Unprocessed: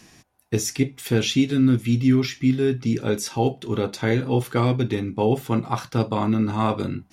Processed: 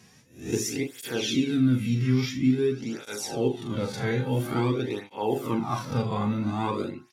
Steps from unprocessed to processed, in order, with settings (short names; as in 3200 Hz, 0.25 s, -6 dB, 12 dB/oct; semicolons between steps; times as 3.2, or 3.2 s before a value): spectral swells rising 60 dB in 0.45 s; resonator 120 Hz, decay 0.83 s, harmonics odd, mix 40%; on a send: early reflections 39 ms -7 dB, 75 ms -14.5 dB; on the sum: tape flanging out of phase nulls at 0.49 Hz, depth 3.5 ms